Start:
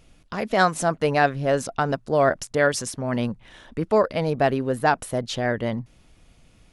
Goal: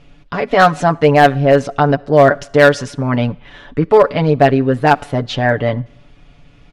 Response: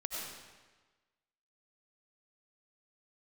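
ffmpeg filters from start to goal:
-filter_complex "[0:a]lowpass=3.6k,aecho=1:1:7:0.68,volume=9.5dB,asoftclip=hard,volume=-9.5dB,asplit=2[a][b];[1:a]atrim=start_sample=2205,asetrate=79380,aresample=44100[c];[b][c]afir=irnorm=-1:irlink=0,volume=-19dB[d];[a][d]amix=inputs=2:normalize=0,volume=7.5dB"

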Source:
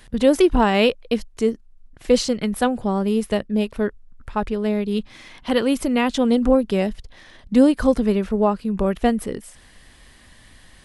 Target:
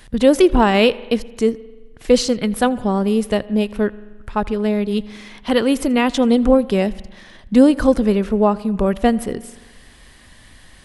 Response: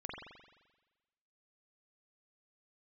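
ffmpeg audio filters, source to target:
-filter_complex "[0:a]asplit=2[a][b];[1:a]atrim=start_sample=2205,adelay=82[c];[b][c]afir=irnorm=-1:irlink=0,volume=-19dB[d];[a][d]amix=inputs=2:normalize=0,volume=3dB"

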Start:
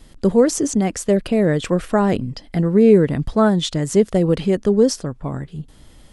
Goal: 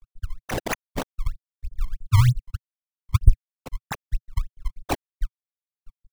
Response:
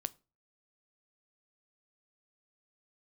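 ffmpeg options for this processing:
-filter_complex "[0:a]afftfilt=real='re*(1-between(b*sr/4096,120,5400))':imag='im*(1-between(b*sr/4096,120,5400))':win_size=4096:overlap=0.75,bandreject=f=111.9:t=h:w=4,bandreject=f=223.8:t=h:w=4,bandreject=f=335.7:t=h:w=4,bandreject=f=447.6:t=h:w=4,bandreject=f=559.5:t=h:w=4,bandreject=f=671.4:t=h:w=4,bandreject=f=783.3:t=h:w=4,bandreject=f=895.2:t=h:w=4,bandreject=f=1.0071k:t=h:w=4,bandreject=f=1.119k:t=h:w=4,bandreject=f=1.2309k:t=h:w=4,bandreject=f=1.3428k:t=h:w=4,bandreject=f=1.4547k:t=h:w=4,bandreject=f=1.5666k:t=h:w=4,afftfilt=real='re*gte(hypot(re,im),0.158)':imag='im*gte(hypot(re,im),0.158)':win_size=1024:overlap=0.75,equalizer=f=120:w=1.3:g=6,acrossover=split=180[a][b];[b]alimiter=level_in=6dB:limit=-24dB:level=0:latency=1:release=19,volume=-6dB[c];[a][c]amix=inputs=2:normalize=0,dynaudnorm=f=170:g=7:m=7dB,acrusher=samples=24:mix=1:aa=0.000001:lfo=1:lforange=38.4:lforate=3.2,asoftclip=type=hard:threshold=-9dB,volume=7.5dB"

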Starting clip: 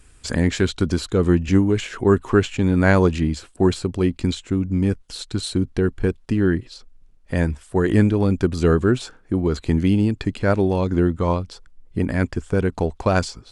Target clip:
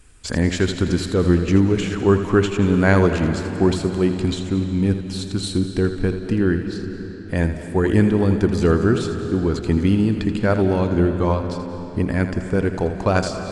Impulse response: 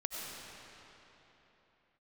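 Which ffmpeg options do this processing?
-filter_complex "[0:a]asplit=2[a][b];[1:a]atrim=start_sample=2205,adelay=82[c];[b][c]afir=irnorm=-1:irlink=0,volume=-8.5dB[d];[a][d]amix=inputs=2:normalize=0"

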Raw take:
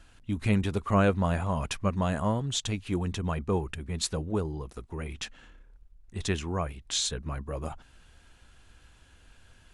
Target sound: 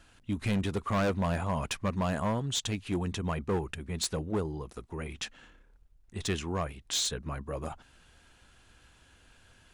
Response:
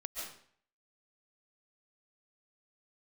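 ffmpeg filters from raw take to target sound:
-af "lowshelf=f=73:g=-8.5,asoftclip=type=hard:threshold=-24.5dB"

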